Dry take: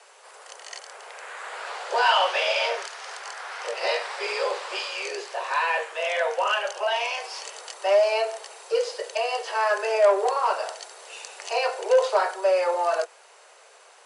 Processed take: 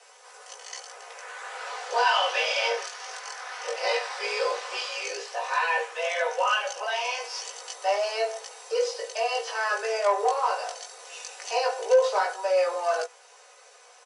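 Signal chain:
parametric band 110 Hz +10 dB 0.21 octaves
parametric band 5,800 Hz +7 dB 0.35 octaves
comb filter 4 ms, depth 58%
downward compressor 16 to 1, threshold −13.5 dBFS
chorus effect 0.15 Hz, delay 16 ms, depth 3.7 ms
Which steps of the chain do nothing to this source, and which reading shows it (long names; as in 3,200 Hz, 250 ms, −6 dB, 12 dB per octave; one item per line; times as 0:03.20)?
parametric band 110 Hz: nothing at its input below 360 Hz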